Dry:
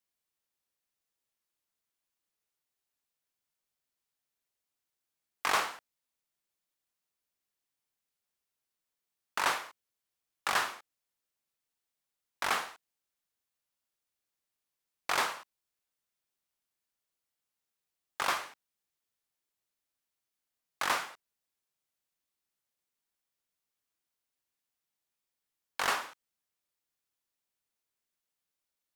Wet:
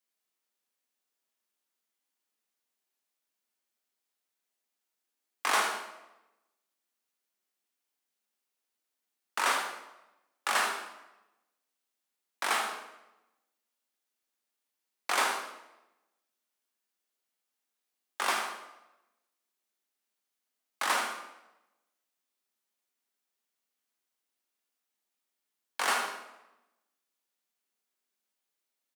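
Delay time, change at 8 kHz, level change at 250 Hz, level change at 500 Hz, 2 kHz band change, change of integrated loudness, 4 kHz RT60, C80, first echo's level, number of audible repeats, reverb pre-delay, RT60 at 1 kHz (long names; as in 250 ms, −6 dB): 77 ms, +4.0 dB, +2.0 dB, +2.5 dB, +2.5 dB, +1.5 dB, 0.75 s, 8.5 dB, −9.0 dB, 1, 5 ms, 0.95 s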